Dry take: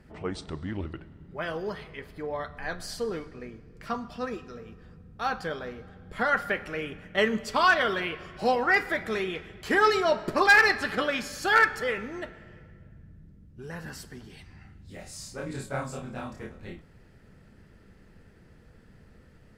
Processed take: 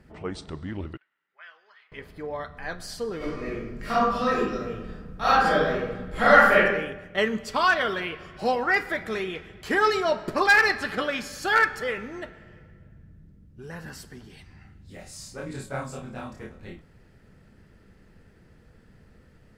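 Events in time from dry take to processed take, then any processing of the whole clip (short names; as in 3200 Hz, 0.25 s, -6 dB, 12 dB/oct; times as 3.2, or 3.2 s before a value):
0.97–1.92 ladder band-pass 2200 Hz, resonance 25%
3.17–6.6 reverb throw, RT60 0.88 s, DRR -11 dB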